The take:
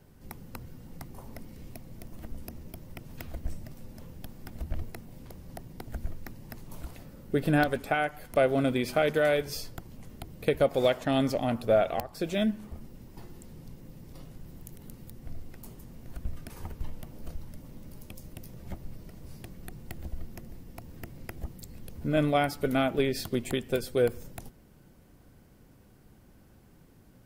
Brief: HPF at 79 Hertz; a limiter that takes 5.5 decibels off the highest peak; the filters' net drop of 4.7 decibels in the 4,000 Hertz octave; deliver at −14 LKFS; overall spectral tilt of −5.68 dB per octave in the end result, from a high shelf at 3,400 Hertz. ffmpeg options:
ffmpeg -i in.wav -af "highpass=79,highshelf=frequency=3400:gain=-4.5,equalizer=frequency=4000:width_type=o:gain=-3,volume=17dB,alimiter=limit=-1.5dB:level=0:latency=1" out.wav

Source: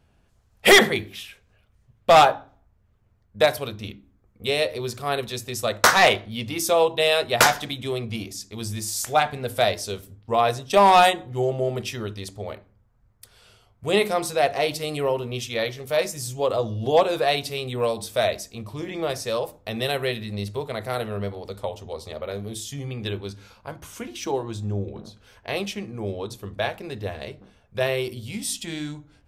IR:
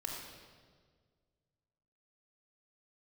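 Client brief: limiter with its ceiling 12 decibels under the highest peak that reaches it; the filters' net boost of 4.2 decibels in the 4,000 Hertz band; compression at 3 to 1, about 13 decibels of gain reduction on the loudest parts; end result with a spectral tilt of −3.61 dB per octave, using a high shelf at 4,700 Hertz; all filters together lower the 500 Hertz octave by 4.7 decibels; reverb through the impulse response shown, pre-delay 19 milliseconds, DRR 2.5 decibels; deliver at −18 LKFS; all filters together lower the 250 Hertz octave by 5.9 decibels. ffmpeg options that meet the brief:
-filter_complex "[0:a]equalizer=frequency=250:width_type=o:gain=-7,equalizer=frequency=500:width_type=o:gain=-4.5,equalizer=frequency=4000:width_type=o:gain=7,highshelf=frequency=4700:gain=-4,acompressor=threshold=-27dB:ratio=3,alimiter=limit=-21dB:level=0:latency=1,asplit=2[link_01][link_02];[1:a]atrim=start_sample=2205,adelay=19[link_03];[link_02][link_03]afir=irnorm=-1:irlink=0,volume=-3dB[link_04];[link_01][link_04]amix=inputs=2:normalize=0,volume=13.5dB"

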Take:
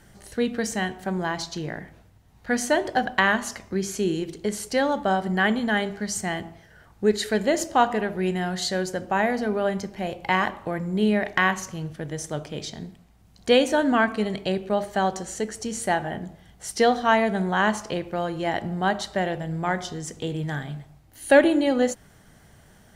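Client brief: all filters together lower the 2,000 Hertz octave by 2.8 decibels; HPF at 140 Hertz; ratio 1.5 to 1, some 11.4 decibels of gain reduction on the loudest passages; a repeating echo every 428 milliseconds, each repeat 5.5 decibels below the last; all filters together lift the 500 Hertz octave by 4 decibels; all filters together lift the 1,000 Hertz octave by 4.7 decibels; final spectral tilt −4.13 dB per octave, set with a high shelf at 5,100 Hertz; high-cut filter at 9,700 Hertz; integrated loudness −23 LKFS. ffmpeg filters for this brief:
ffmpeg -i in.wav -af "highpass=140,lowpass=9700,equalizer=frequency=500:width_type=o:gain=3.5,equalizer=frequency=1000:width_type=o:gain=6,equalizer=frequency=2000:width_type=o:gain=-7,highshelf=frequency=5100:gain=6.5,acompressor=threshold=-40dB:ratio=1.5,aecho=1:1:428|856|1284|1712|2140|2568|2996:0.531|0.281|0.149|0.079|0.0419|0.0222|0.0118,volume=7dB" out.wav

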